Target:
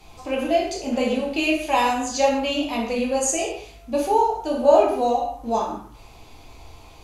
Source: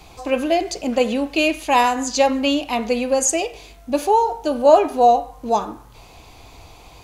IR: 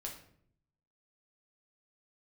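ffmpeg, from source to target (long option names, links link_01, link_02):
-filter_complex "[1:a]atrim=start_sample=2205,atrim=end_sample=6174,asetrate=28224,aresample=44100[link_01];[0:a][link_01]afir=irnorm=-1:irlink=0,volume=-4dB"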